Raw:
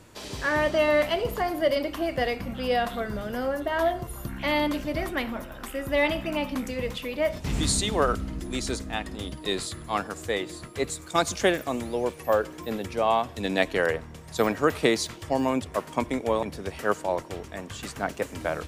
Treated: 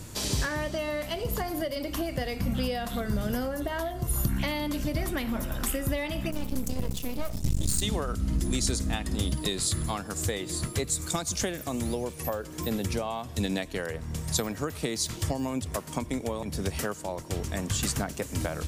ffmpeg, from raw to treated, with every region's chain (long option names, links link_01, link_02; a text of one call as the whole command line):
ffmpeg -i in.wav -filter_complex "[0:a]asettb=1/sr,asplit=3[link_01][link_02][link_03];[link_01]atrim=end=6.314[link_04];[link_02]atrim=start=6.31:end=7.82,asetpts=PTS-STARTPTS,afade=type=in:duration=0.004:curve=qsin,afade=type=out:start_time=1.506:duration=0.004:curve=qsin,equalizer=frequency=1500:width=0.44:gain=-11.5,aeval=exprs='max(val(0),0)':channel_layout=same[link_05];[link_03]atrim=start=7.816[link_06];[link_04][link_05]acrossfade=duration=0.004:curve1=hsin:curve2=qsin[link_07];[link_07][link_06]acrossfade=duration=0.004:curve1=qsin:curve2=hsin,acompressor=threshold=-33dB:ratio=10,bass=frequency=250:gain=10,treble=frequency=4000:gain=11,volume=3dB" out.wav